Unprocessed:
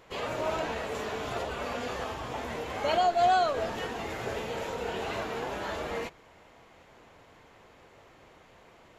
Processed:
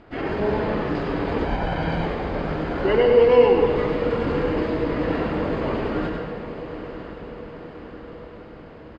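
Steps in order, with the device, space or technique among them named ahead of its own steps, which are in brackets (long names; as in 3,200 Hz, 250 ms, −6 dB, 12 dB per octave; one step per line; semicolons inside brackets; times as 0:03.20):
parametric band 4,700 Hz +2.5 dB 0.3 octaves
monster voice (pitch shifter −7 semitones; low-shelf EQ 230 Hz +5 dB; single-tap delay 101 ms −6 dB; convolution reverb RT60 1.3 s, pre-delay 96 ms, DRR 4.5 dB)
0:01.44–0:02.06: comb filter 1.3 ms, depth 61%
high-frequency loss of the air 160 metres
feedback delay with all-pass diffusion 947 ms, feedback 57%, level −11 dB
level +6.5 dB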